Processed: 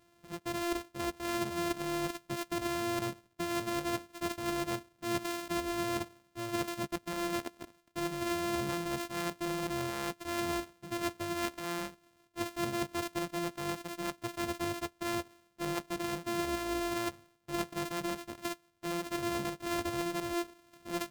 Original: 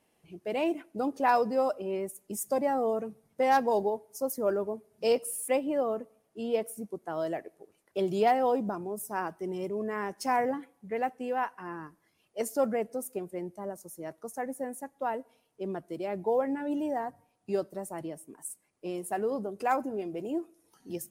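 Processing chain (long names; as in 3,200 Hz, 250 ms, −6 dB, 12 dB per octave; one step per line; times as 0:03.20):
samples sorted by size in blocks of 128 samples
reversed playback
downward compressor 16 to 1, threshold −36 dBFS, peak gain reduction 17.5 dB
reversed playback
level +5 dB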